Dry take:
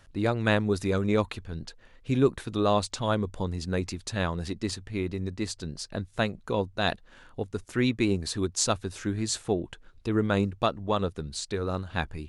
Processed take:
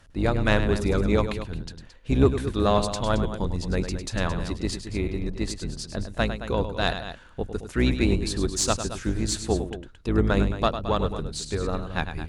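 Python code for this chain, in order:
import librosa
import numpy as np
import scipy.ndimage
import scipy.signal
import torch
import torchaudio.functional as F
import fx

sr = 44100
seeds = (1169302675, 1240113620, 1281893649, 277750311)

y = fx.octave_divider(x, sr, octaves=2, level_db=0.0)
y = fx.echo_multitap(y, sr, ms=(102, 220), db=(-9.5, -12.0))
y = fx.cheby_harmonics(y, sr, harmonics=(2, 3, 6), levels_db=(-23, -24, -35), full_scale_db=-7.5)
y = y * 10.0 ** (3.0 / 20.0)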